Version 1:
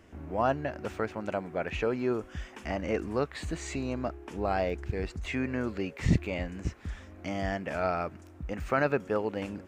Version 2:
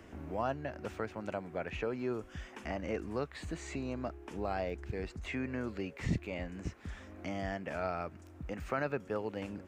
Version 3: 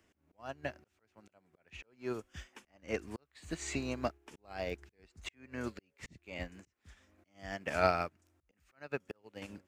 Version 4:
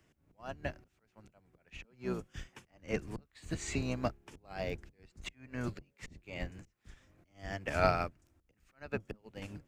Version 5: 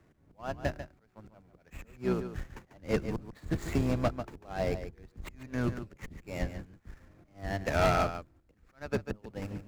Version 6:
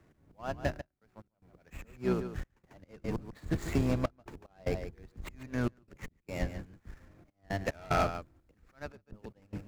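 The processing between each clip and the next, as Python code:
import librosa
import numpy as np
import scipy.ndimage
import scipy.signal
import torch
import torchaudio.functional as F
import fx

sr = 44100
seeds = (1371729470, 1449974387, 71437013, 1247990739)

y1 = fx.band_squash(x, sr, depth_pct=40)
y1 = F.gain(torch.from_numpy(y1), -6.5).numpy()
y2 = fx.high_shelf(y1, sr, hz=2300.0, db=11.5)
y2 = fx.auto_swell(y2, sr, attack_ms=394.0)
y2 = fx.upward_expand(y2, sr, threshold_db=-50.0, expansion=2.5)
y2 = F.gain(torch.from_numpy(y2), 8.0).numpy()
y3 = fx.octave_divider(y2, sr, octaves=1, level_db=2.0)
y4 = scipy.signal.medfilt(y3, 15)
y4 = y4 + 10.0 ** (-11.0 / 20.0) * np.pad(y4, (int(144 * sr / 1000.0), 0))[:len(y4)]
y4 = np.clip(y4, -10.0 ** (-27.5 / 20.0), 10.0 ** (-27.5 / 20.0))
y4 = F.gain(torch.from_numpy(y4), 7.0).numpy()
y5 = fx.step_gate(y4, sr, bpm=74, pattern='xxxx.x.x', floor_db=-24.0, edge_ms=4.5)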